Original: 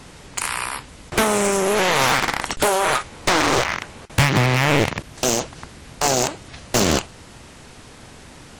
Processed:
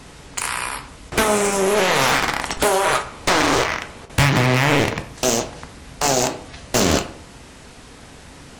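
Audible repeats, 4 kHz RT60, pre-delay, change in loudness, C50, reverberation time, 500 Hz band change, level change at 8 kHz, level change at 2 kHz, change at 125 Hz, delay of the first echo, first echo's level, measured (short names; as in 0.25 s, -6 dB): none, 0.35 s, 4 ms, +0.5 dB, 12.5 dB, 0.60 s, +1.5 dB, +0.5 dB, +1.0 dB, +0.5 dB, none, none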